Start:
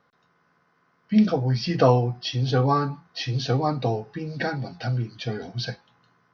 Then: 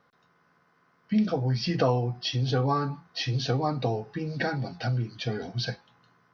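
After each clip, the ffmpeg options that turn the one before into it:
-af "acompressor=threshold=0.0562:ratio=2"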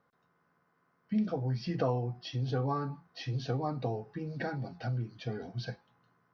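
-af "equalizer=f=4600:w=0.48:g=-7.5,volume=0.501"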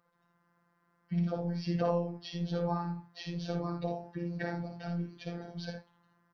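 -af "aecho=1:1:57|79:0.501|0.376,afftfilt=real='hypot(re,im)*cos(PI*b)':imag='0':win_size=1024:overlap=0.75,volume=1.19"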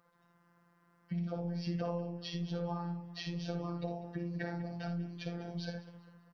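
-filter_complex "[0:a]acompressor=threshold=0.00794:ratio=2.5,asplit=2[s0][s1];[s1]adelay=197,lowpass=f=3800:p=1,volume=0.178,asplit=2[s2][s3];[s3]adelay=197,lowpass=f=3800:p=1,volume=0.5,asplit=2[s4][s5];[s5]adelay=197,lowpass=f=3800:p=1,volume=0.5,asplit=2[s6][s7];[s7]adelay=197,lowpass=f=3800:p=1,volume=0.5,asplit=2[s8][s9];[s9]adelay=197,lowpass=f=3800:p=1,volume=0.5[s10];[s0][s2][s4][s6][s8][s10]amix=inputs=6:normalize=0,volume=1.5"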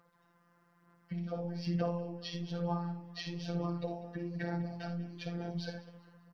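-af "aphaser=in_gain=1:out_gain=1:delay=4.2:decay=0.37:speed=1.1:type=sinusoidal"

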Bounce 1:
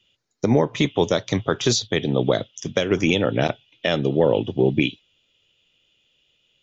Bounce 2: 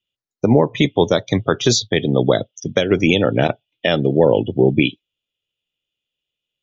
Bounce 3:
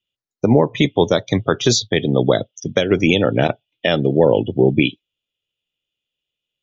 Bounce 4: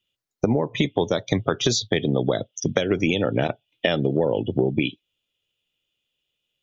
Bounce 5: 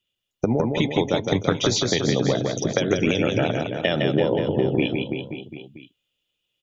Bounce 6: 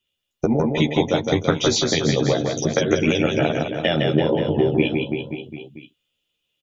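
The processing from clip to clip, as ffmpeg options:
-af "afftdn=nr=22:nf=-32,volume=1.68"
-af anull
-af "acompressor=threshold=0.0794:ratio=6,volume=1.58"
-af "aecho=1:1:160|336|529.6|742.6|976.8:0.631|0.398|0.251|0.158|0.1,volume=0.891"
-filter_complex "[0:a]asplit=2[s0][s1];[s1]adelay=13,volume=0.75[s2];[s0][s2]amix=inputs=2:normalize=0"

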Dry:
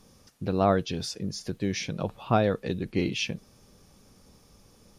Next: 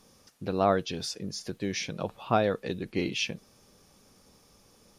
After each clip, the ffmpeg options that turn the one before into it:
-af "lowshelf=f=200:g=-8.5"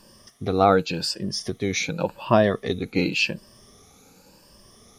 -af "afftfilt=real='re*pow(10,12/40*sin(2*PI*(1.3*log(max(b,1)*sr/1024/100)/log(2)-(0.9)*(pts-256)/sr)))':imag='im*pow(10,12/40*sin(2*PI*(1.3*log(max(b,1)*sr/1024/100)/log(2)-(0.9)*(pts-256)/sr)))':win_size=1024:overlap=0.75,volume=1.88"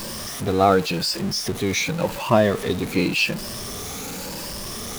-af "aeval=exprs='val(0)+0.5*0.0473*sgn(val(0))':c=same"

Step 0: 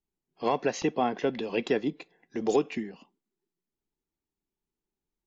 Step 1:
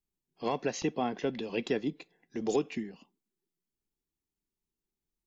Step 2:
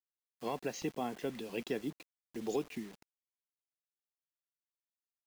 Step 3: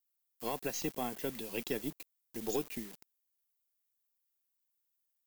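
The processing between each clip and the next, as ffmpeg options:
-af "equalizer=f=930:w=0.33:g=-6"
-af "acrusher=bits=7:mix=0:aa=0.000001,volume=0.501"
-af "aemphasis=mode=production:type=50fm,aeval=exprs='0.0794*(cos(1*acos(clip(val(0)/0.0794,-1,1)))-cos(1*PI/2))+0.00282*(cos(6*acos(clip(val(0)/0.0794,-1,1)))-cos(6*PI/2))+0.002*(cos(7*acos(clip(val(0)/0.0794,-1,1)))-cos(7*PI/2))':c=same"

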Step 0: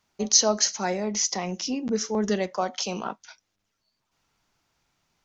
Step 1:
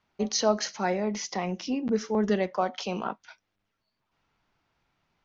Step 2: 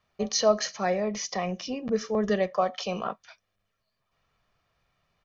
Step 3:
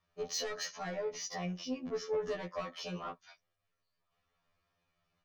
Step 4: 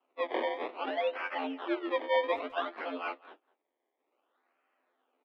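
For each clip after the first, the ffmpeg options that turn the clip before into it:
-af "lowpass=3200"
-af "aecho=1:1:1.7:0.54"
-af "asoftclip=type=tanh:threshold=0.0708,afftfilt=real='re*2*eq(mod(b,4),0)':imag='im*2*eq(mod(b,4),0)':win_size=2048:overlap=0.75,volume=0.596"
-filter_complex "[0:a]acrusher=samples=23:mix=1:aa=0.000001:lfo=1:lforange=23:lforate=0.59,highpass=f=210:t=q:w=0.5412,highpass=f=210:t=q:w=1.307,lowpass=f=3300:t=q:w=0.5176,lowpass=f=3300:t=q:w=0.7071,lowpass=f=3300:t=q:w=1.932,afreqshift=88,asplit=2[s0][s1];[s1]adelay=200,highpass=300,lowpass=3400,asoftclip=type=hard:threshold=0.0266,volume=0.0794[s2];[s0][s2]amix=inputs=2:normalize=0,volume=2"

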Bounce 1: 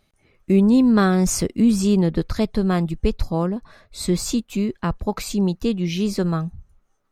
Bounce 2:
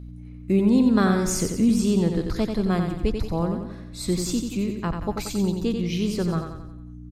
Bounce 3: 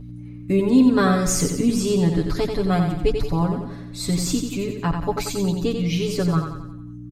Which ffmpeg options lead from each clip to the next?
-af "aeval=exprs='val(0)+0.0224*(sin(2*PI*60*n/s)+sin(2*PI*2*60*n/s)/2+sin(2*PI*3*60*n/s)/3+sin(2*PI*4*60*n/s)/4+sin(2*PI*5*60*n/s)/5)':c=same,aecho=1:1:90|180|270|360|450|540:0.501|0.246|0.12|0.059|0.0289|0.0142,volume=0.631"
-af "aecho=1:1:7:0.99,volume=1.12"

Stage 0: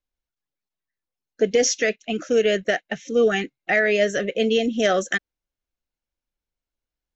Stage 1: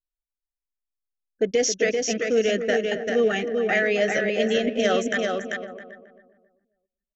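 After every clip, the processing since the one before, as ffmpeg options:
-filter_complex "[0:a]asplit=2[s0][s1];[s1]aecho=0:1:391|782|1173|1564:0.631|0.164|0.0427|0.0111[s2];[s0][s2]amix=inputs=2:normalize=0,anlmdn=15.8,asplit=2[s3][s4];[s4]adelay=270,lowpass=f=1100:p=1,volume=0.355,asplit=2[s5][s6];[s6]adelay=270,lowpass=f=1100:p=1,volume=0.39,asplit=2[s7][s8];[s8]adelay=270,lowpass=f=1100:p=1,volume=0.39,asplit=2[s9][s10];[s10]adelay=270,lowpass=f=1100:p=1,volume=0.39[s11];[s5][s7][s9][s11]amix=inputs=4:normalize=0[s12];[s3][s12]amix=inputs=2:normalize=0,volume=0.708"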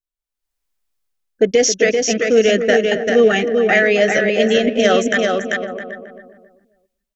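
-af "dynaudnorm=f=170:g=5:m=6.31,volume=0.891"

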